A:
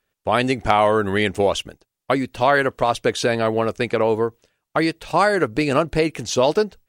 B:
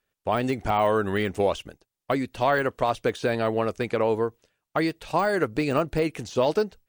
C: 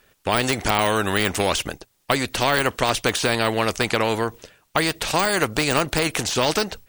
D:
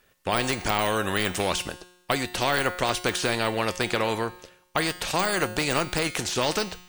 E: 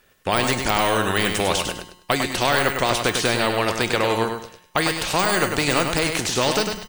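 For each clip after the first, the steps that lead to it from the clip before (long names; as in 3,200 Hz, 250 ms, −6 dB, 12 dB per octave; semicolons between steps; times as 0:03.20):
de-essing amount 70%; level −4.5 dB
every bin compressed towards the loudest bin 2 to 1; level +8 dB
tuned comb filter 180 Hz, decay 0.83 s, harmonics all, mix 70%; level +5 dB
repeating echo 101 ms, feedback 26%, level −6 dB; level +4 dB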